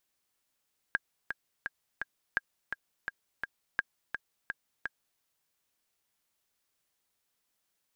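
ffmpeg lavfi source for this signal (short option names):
-f lavfi -i "aevalsrc='pow(10,(-14-7*gte(mod(t,4*60/169),60/169))/20)*sin(2*PI*1620*mod(t,60/169))*exp(-6.91*mod(t,60/169)/0.03)':d=4.26:s=44100"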